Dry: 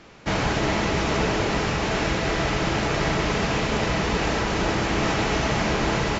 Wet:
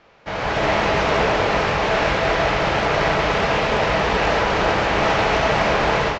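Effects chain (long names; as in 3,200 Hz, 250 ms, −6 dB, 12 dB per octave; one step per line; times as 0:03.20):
low shelf with overshoot 410 Hz −6.5 dB, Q 1.5
automatic gain control gain up to 13 dB
high-frequency loss of the air 140 metres
double-tracking delay 20 ms −13 dB
highs frequency-modulated by the lows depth 0.2 ms
level −3.5 dB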